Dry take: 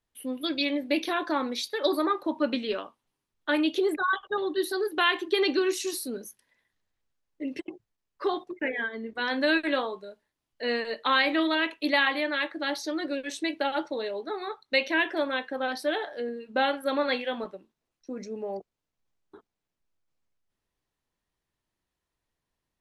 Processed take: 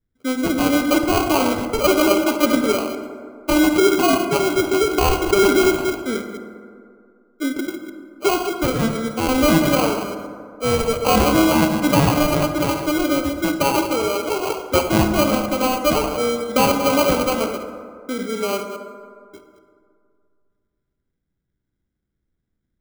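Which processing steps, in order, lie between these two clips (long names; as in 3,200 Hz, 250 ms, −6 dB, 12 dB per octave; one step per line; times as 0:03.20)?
delay that plays each chunk backwards 118 ms, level −9 dB
low-pass that shuts in the quiet parts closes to 310 Hz, open at −23 dBFS
high-shelf EQ 3,600 Hz −8 dB
in parallel at −2.5 dB: brickwall limiter −20 dBFS, peak gain reduction 8 dB
on the sum: sample-rate reduction 1,800 Hz, jitter 0%
feedback echo with a band-pass in the loop 139 ms, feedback 71%, band-pass 310 Hz, level −15 dB
on a send at −8 dB: convolution reverb RT60 2.2 s, pre-delay 47 ms
on the sum: level +5.5 dB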